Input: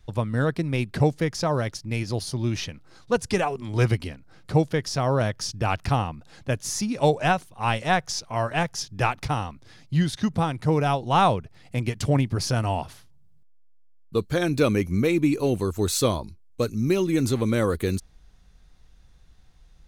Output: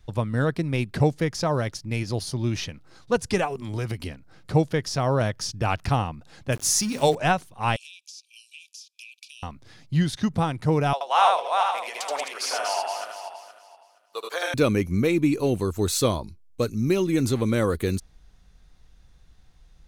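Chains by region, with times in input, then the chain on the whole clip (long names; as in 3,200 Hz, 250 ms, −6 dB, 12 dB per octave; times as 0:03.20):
0:03.45–0:04.06: high-shelf EQ 11,000 Hz +10 dB + downward compressor 5 to 1, threshold −25 dBFS
0:06.52–0:07.15: high-shelf EQ 3,600 Hz +10 dB + mains-hum notches 50/100/150/200/250/300/350 Hz + centre clipping without the shift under −36.5 dBFS
0:07.76–0:09.43: linear-phase brick-wall band-pass 2,300–13,000 Hz + downward compressor 10 to 1, threshold −40 dBFS
0:10.93–0:14.54: feedback delay that plays each chunk backwards 235 ms, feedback 45%, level −4 dB + high-pass filter 610 Hz 24 dB per octave + single-tap delay 77 ms −3 dB
whole clip: no processing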